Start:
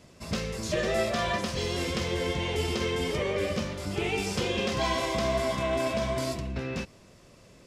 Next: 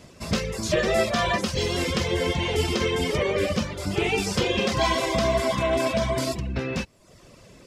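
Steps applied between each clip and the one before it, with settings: reverb removal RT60 0.65 s; trim +6.5 dB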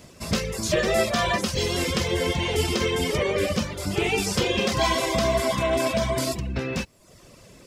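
treble shelf 9.4 kHz +9.5 dB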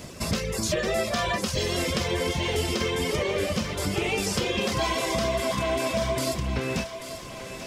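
compression 3:1, threshold -34 dBFS, peak gain reduction 12.5 dB; thinning echo 838 ms, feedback 63%, high-pass 350 Hz, level -10.5 dB; trim +7 dB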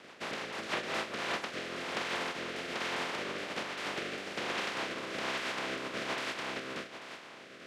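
spectral contrast reduction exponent 0.13; band-pass 230–2400 Hz; rotary cabinet horn 6.7 Hz, later 1.2 Hz, at 0.45 s

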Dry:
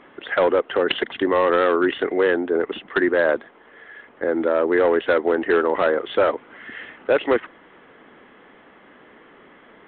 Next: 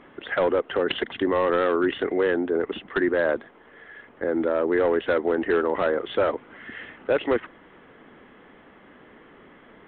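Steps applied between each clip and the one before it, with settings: bass shelf 200 Hz +9 dB; in parallel at -2 dB: peak limiter -15.5 dBFS, peak gain reduction 8 dB; on the sum: trim -8 dB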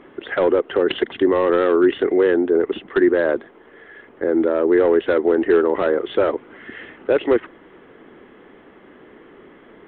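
peaking EQ 370 Hz +7.5 dB 0.74 oct; trim +1.5 dB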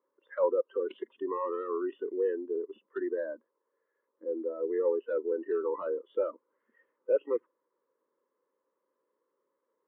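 spectral noise reduction 21 dB; two resonant band-passes 730 Hz, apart 0.89 oct; trim -4.5 dB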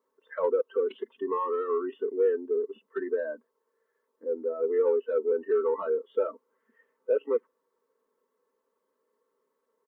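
comb 4.5 ms, depth 77%; in parallel at -11 dB: saturation -25 dBFS, distortion -13 dB

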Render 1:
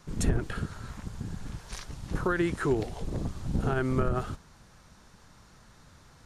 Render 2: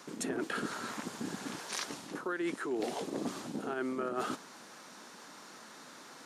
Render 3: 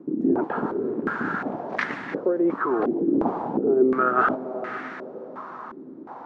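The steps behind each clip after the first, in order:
Chebyshev high-pass 260 Hz, order 3; reverse; compression 12:1, threshold -40 dBFS, peak gain reduction 17.5 dB; reverse; trim +8 dB
echo that smears into a reverb 502 ms, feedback 41%, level -10 dB; step-sequenced low-pass 2.8 Hz 320–1900 Hz; trim +9 dB

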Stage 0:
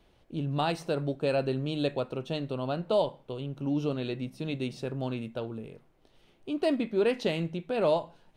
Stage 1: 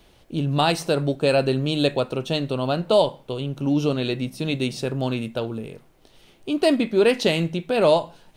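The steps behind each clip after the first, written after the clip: treble shelf 3.9 kHz +9 dB; trim +8 dB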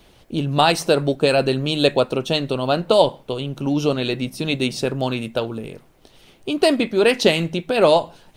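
harmonic-percussive split percussive +6 dB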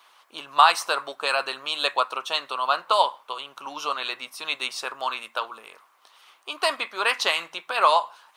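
resonant high-pass 1.1 kHz, resonance Q 4.5; trim -3.5 dB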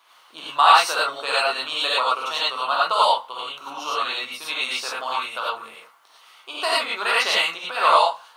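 gated-style reverb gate 130 ms rising, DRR -6 dB; trim -3.5 dB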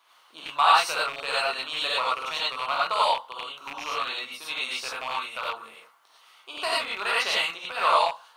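rattle on loud lows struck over -48 dBFS, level -19 dBFS; trim -5 dB

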